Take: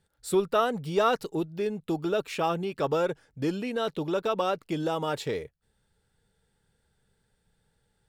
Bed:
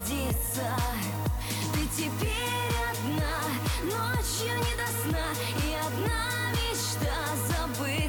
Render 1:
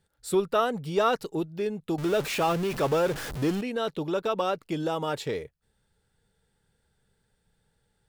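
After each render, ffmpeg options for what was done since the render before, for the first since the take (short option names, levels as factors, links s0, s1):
-filter_complex "[0:a]asettb=1/sr,asplit=3[s0][s1][s2];[s0]atrim=end=1.984[s3];[s1]atrim=start=1.98:end=3.61,asetpts=PTS-STARTPTS,afade=t=in:d=0.004:c=qsin,afade=t=out:st=1.626:d=0.004:c=qsin,aeval=exprs='val(0)+0.5*0.0316*sgn(val(0))':c=same[s4];[s2]atrim=start=3.606[s5];[s3][s4]acrossfade=d=0.004:c1=hsin:c2=qsin[s6];[s6][s5]acrossfade=d=0.004:c1=qsin:c2=hsin"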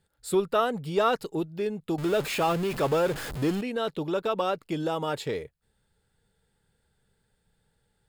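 -af "bandreject=f=5800:w=11"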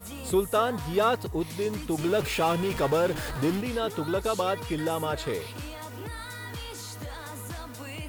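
-filter_complex "[1:a]volume=0.355[s0];[0:a][s0]amix=inputs=2:normalize=0"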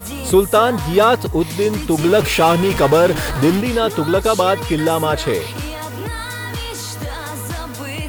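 -af "volume=3.98,alimiter=limit=0.794:level=0:latency=1"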